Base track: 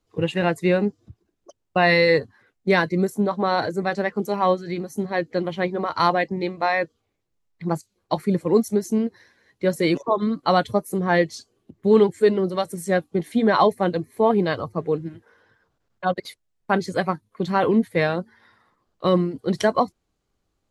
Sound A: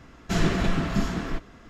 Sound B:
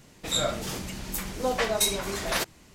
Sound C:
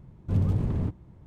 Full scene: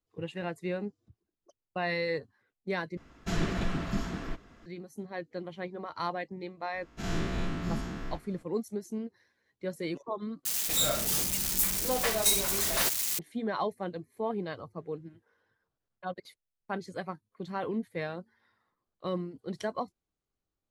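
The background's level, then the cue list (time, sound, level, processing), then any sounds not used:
base track -14.5 dB
2.97 s: replace with A -7 dB
6.74 s: add A -14 dB + every event in the spectrogram widened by 120 ms
10.45 s: replace with B -4 dB + zero-crossing glitches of -18 dBFS
not used: C

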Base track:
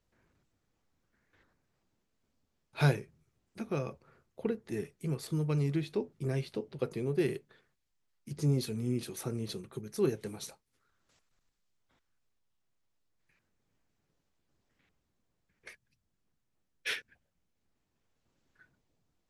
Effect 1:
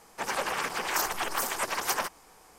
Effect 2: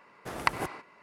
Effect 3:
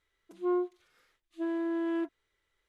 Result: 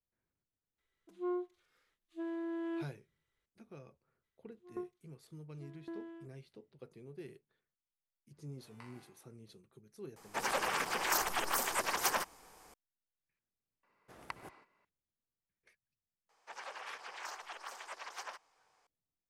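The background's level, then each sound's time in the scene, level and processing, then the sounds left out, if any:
base track -18.5 dB
0.78 s: add 3 -7.5 dB
4.21 s: add 3 -10 dB, fades 0.05 s + sawtooth tremolo in dB decaying 1.8 Hz, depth 20 dB
8.33 s: add 2 -10.5 dB + chord resonator G2 minor, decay 0.68 s
10.16 s: add 1 -3.5 dB
13.83 s: add 2 -18 dB
16.29 s: add 1 -15 dB + three-band isolator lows -21 dB, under 450 Hz, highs -20 dB, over 7 kHz

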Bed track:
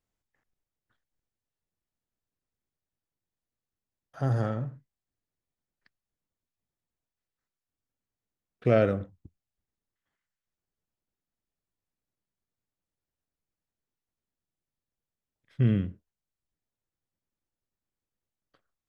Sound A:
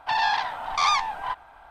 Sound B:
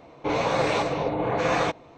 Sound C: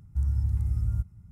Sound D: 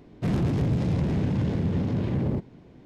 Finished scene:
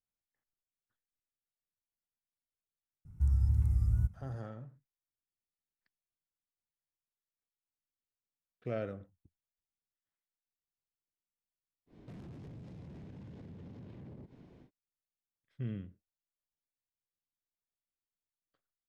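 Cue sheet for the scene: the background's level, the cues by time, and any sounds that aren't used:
bed track -15 dB
3.05 s: add C -2 dB + vibrato 2.3 Hz 85 cents
11.86 s: add D -7.5 dB, fades 0.10 s + compression 12:1, threshold -39 dBFS
not used: A, B

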